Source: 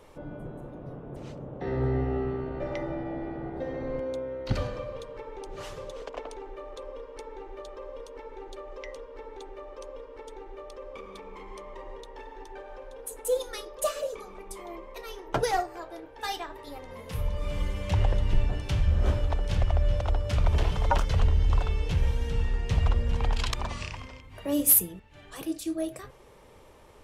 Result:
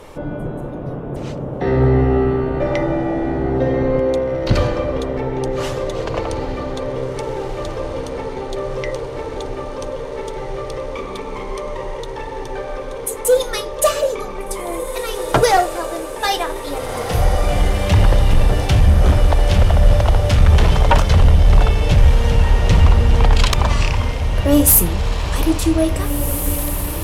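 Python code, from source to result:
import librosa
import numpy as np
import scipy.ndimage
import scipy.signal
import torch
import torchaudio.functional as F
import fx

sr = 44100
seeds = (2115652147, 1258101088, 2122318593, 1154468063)

y = fx.fold_sine(x, sr, drive_db=9, ceiling_db=-8.0)
y = fx.echo_diffused(y, sr, ms=1812, feedback_pct=68, wet_db=-8.5)
y = y * 10.0 ** (1.5 / 20.0)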